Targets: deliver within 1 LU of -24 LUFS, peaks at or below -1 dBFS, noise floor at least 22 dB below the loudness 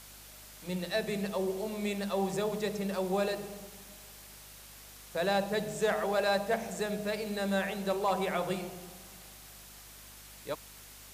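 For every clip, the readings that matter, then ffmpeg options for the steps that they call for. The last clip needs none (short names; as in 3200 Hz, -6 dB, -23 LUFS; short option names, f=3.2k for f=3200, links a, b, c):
hum 50 Hz; harmonics up to 250 Hz; hum level -57 dBFS; noise floor -51 dBFS; noise floor target -55 dBFS; loudness -33.0 LUFS; peak -19.5 dBFS; loudness target -24.0 LUFS
-> -af "bandreject=f=50:t=h:w=4,bandreject=f=100:t=h:w=4,bandreject=f=150:t=h:w=4,bandreject=f=200:t=h:w=4,bandreject=f=250:t=h:w=4"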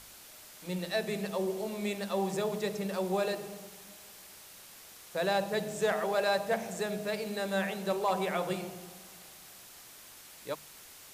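hum none; noise floor -52 dBFS; noise floor target -55 dBFS
-> -af "afftdn=nr=6:nf=-52"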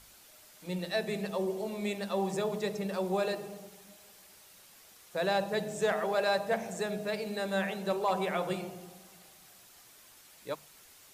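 noise floor -57 dBFS; loudness -33.0 LUFS; peak -19.5 dBFS; loudness target -24.0 LUFS
-> -af "volume=9dB"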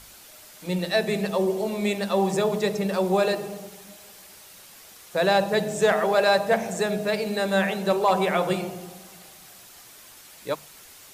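loudness -24.0 LUFS; peak -10.5 dBFS; noise floor -48 dBFS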